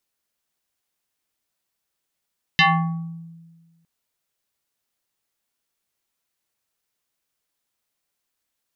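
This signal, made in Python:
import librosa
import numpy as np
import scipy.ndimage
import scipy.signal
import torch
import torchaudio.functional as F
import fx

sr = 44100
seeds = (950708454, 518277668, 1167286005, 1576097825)

y = fx.fm2(sr, length_s=1.26, level_db=-10.5, carrier_hz=166.0, ratio=5.78, index=3.9, index_s=0.79, decay_s=1.5, shape='exponential')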